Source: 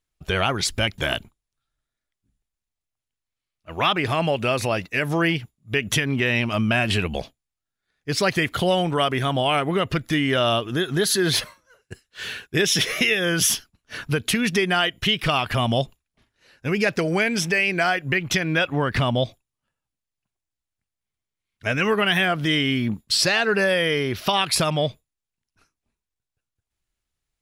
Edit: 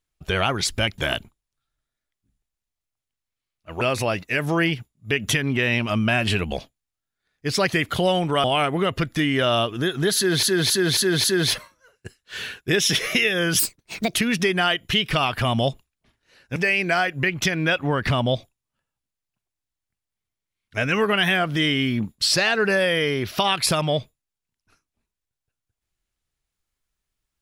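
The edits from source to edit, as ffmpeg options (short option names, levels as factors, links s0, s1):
-filter_complex "[0:a]asplit=10[s0][s1][s2][s3][s4][s5][s6][s7][s8][s9];[s0]atrim=end=3.812[s10];[s1]atrim=start=4.438:end=9.072[s11];[s2]atrim=start=9.378:end=11.372[s12];[s3]atrim=start=11.098:end=11.372[s13];[s4]atrim=start=11.098:end=11.372[s14];[s5]atrim=start=11.098:end=11.372[s15];[s6]atrim=start=11.098:end=13.454[s16];[s7]atrim=start=13.45:end=14.27,asetpts=PTS-STARTPTS,asetrate=65709,aresample=44100[s17];[s8]atrim=start=14.266:end=16.692[s18];[s9]atrim=start=17.448[s19];[s10][s11]acrossfade=d=0.004:c1=hsin:c2=hsin[s20];[s20][s12]acrossfade=d=0.004:c1=hsin:c2=hsin[s21];[s21][s13]acrossfade=d=0.004:c1=hsin:c2=hsin[s22];[s22][s14]acrossfade=d=0.004:c1=hsin:c2=hsin[s23];[s23][s15]acrossfade=d=0.004:c1=hsin:c2=hsin[s24];[s24][s16]acrossfade=d=0.004:c1=hsin:c2=hsin[s25];[s25][s17]acrossfade=d=0.004:c1=hsin:c2=hsin[s26];[s26][s18]acrossfade=d=0.004:c1=hsin:c2=hsin[s27];[s27][s19]acrossfade=d=0.004:c1=hsin:c2=hsin"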